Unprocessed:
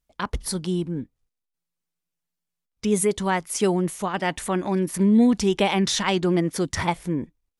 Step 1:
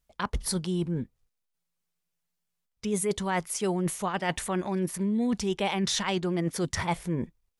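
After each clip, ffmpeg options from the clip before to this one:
ffmpeg -i in.wav -af "equalizer=frequency=290:width=7.2:gain=-12.5,areverse,acompressor=threshold=-27dB:ratio=6,areverse,volume=2dB" out.wav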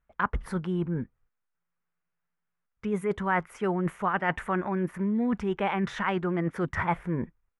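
ffmpeg -i in.wav -af "firequalizer=gain_entry='entry(630,0);entry(1400,8);entry(4300,-21)':delay=0.05:min_phase=1" out.wav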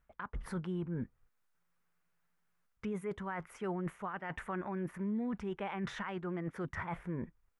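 ffmpeg -i in.wav -af "areverse,acompressor=threshold=-34dB:ratio=6,areverse,alimiter=level_in=10.5dB:limit=-24dB:level=0:latency=1:release=410,volume=-10.5dB,volume=5dB" out.wav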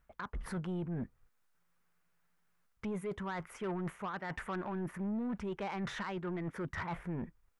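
ffmpeg -i in.wav -af "asoftclip=type=tanh:threshold=-35dB,volume=3dB" out.wav

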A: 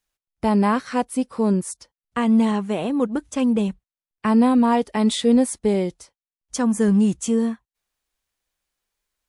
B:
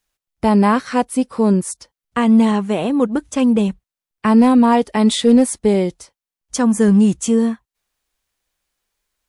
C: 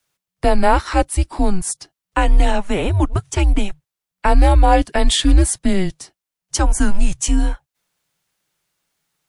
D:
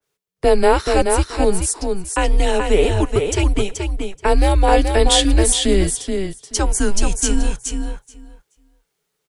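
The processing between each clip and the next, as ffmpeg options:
ffmpeg -i in.wav -af "asoftclip=type=hard:threshold=-9.5dB,volume=5dB" out.wav
ffmpeg -i in.wav -filter_complex "[0:a]lowshelf=frequency=77:gain=-10,acrossover=split=310|550|1500[link_01][link_02][link_03][link_04];[link_02]acompressor=threshold=-33dB:ratio=6[link_05];[link_01][link_05][link_03][link_04]amix=inputs=4:normalize=0,afreqshift=-190,volume=3.5dB" out.wav
ffmpeg -i in.wav -filter_complex "[0:a]equalizer=frequency=430:width_type=o:width=0.34:gain=15,asplit=2[link_01][link_02];[link_02]aecho=0:1:429|858|1287:0.562|0.0844|0.0127[link_03];[link_01][link_03]amix=inputs=2:normalize=0,adynamicequalizer=threshold=0.0251:dfrequency=2100:dqfactor=0.7:tfrequency=2100:tqfactor=0.7:attack=5:release=100:ratio=0.375:range=3.5:mode=boostabove:tftype=highshelf,volume=-3.5dB" out.wav

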